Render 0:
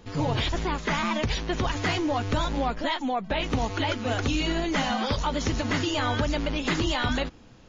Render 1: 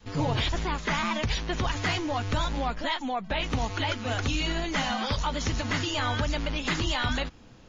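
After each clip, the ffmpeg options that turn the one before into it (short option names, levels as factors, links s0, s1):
-af "adynamicequalizer=threshold=0.0112:dfrequency=370:dqfactor=0.72:tfrequency=370:tqfactor=0.72:attack=5:release=100:ratio=0.375:range=3:mode=cutabove:tftype=bell"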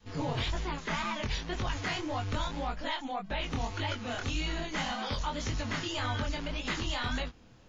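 -af "flanger=delay=19.5:depth=6.4:speed=1.8,volume=0.75"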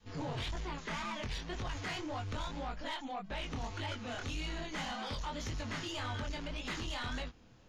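-af "asoftclip=type=tanh:threshold=0.0355,volume=0.668"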